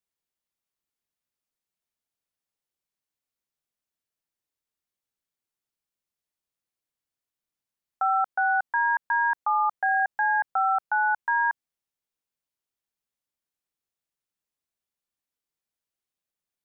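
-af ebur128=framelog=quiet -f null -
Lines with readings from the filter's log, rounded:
Integrated loudness:
  I:         -24.3 LUFS
  Threshold: -34.5 LUFS
Loudness range:
  LRA:         9.0 LU
  Threshold: -46.7 LUFS
  LRA low:   -33.2 LUFS
  LRA high:  -24.1 LUFS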